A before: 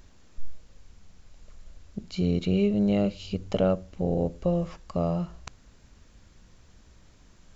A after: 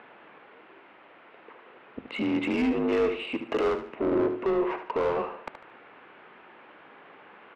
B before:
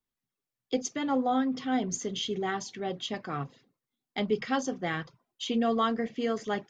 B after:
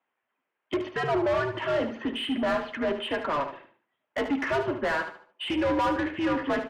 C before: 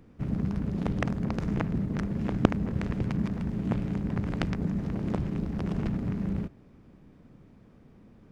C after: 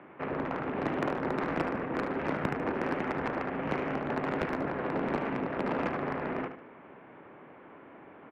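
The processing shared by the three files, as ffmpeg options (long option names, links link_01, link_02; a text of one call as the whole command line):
ffmpeg -i in.wav -filter_complex "[0:a]highpass=frequency=380:width_type=q:width=0.5412,highpass=frequency=380:width_type=q:width=1.307,lowpass=frequency=3000:width_type=q:width=0.5176,lowpass=frequency=3000:width_type=q:width=0.7071,lowpass=frequency=3000:width_type=q:width=1.932,afreqshift=-150,asplit=2[link_01][link_02];[link_02]highpass=frequency=720:poles=1,volume=34dB,asoftclip=type=tanh:threshold=-9dB[link_03];[link_01][link_03]amix=inputs=2:normalize=0,lowpass=frequency=1300:poles=1,volume=-6dB,aecho=1:1:74|148|222|296:0.335|0.107|0.0343|0.011,volume=-7.5dB" out.wav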